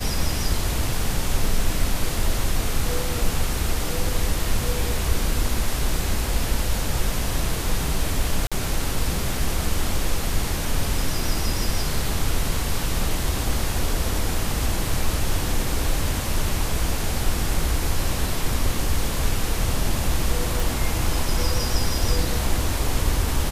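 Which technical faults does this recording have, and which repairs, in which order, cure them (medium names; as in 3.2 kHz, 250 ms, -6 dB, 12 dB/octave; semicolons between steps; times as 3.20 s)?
8.47–8.52 s: dropout 46 ms
20.60 s: pop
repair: de-click; interpolate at 8.47 s, 46 ms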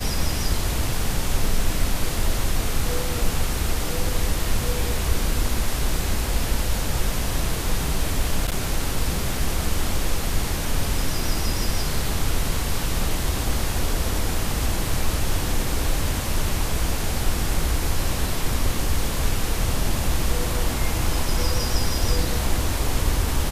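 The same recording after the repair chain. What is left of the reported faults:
nothing left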